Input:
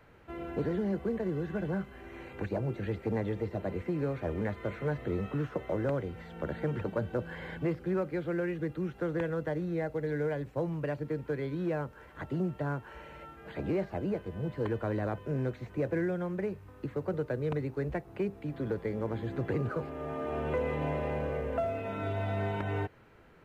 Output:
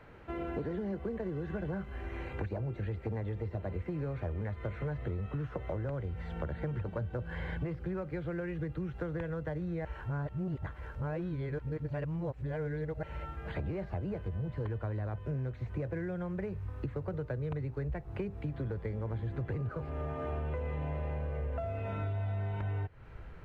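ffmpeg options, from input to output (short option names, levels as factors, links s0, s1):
-filter_complex "[0:a]asplit=3[s0][s1][s2];[s0]atrim=end=9.852[s3];[s1]atrim=start=9.848:end=13.032,asetpts=PTS-STARTPTS,areverse[s4];[s2]atrim=start=13.028[s5];[s3][s4]acrossfade=d=0.004:c1=hsin:c2=hsin[s6];[s6][s5]acrossfade=d=0.004:c1=hsin:c2=hsin,lowpass=f=3500:p=1,asubboost=boost=6:cutoff=100,acompressor=threshold=0.0126:ratio=6,volume=1.68"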